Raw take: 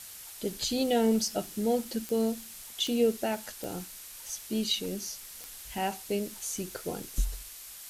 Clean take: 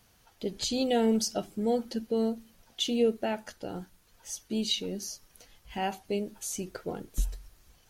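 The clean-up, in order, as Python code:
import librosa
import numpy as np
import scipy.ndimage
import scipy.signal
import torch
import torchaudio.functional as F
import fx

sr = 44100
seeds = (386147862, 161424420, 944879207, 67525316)

y = fx.fix_declick_ar(x, sr, threshold=10.0)
y = fx.noise_reduce(y, sr, print_start_s=7.38, print_end_s=7.88, reduce_db=17.0)
y = fx.fix_level(y, sr, at_s=7.43, step_db=8.0)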